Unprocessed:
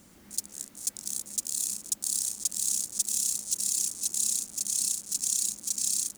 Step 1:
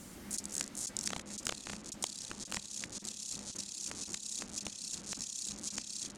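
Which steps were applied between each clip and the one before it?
compressor whose output falls as the input rises −32 dBFS, ratio −0.5
wrap-around overflow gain 16 dB
treble cut that deepens with the level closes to 2,500 Hz, closed at −27.5 dBFS
level +2.5 dB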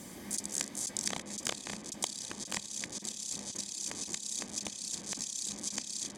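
notch comb filter 1,400 Hz
level +4.5 dB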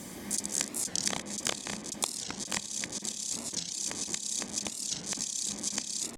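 wow of a warped record 45 rpm, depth 250 cents
level +4 dB

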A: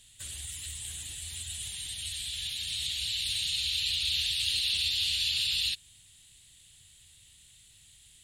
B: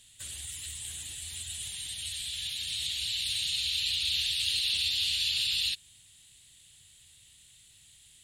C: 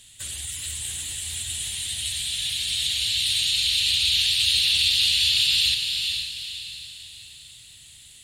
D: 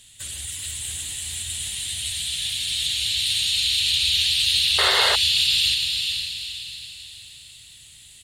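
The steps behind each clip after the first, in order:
low-shelf EQ 69 Hz −7.5 dB
feedback delay with all-pass diffusion 457 ms, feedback 42%, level −5 dB; level +7.5 dB
loudspeakers that aren't time-aligned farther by 53 metres −10 dB, 93 metres −11 dB; sound drawn into the spectrogram noise, 0:04.78–0:05.16, 380–2,200 Hz −23 dBFS

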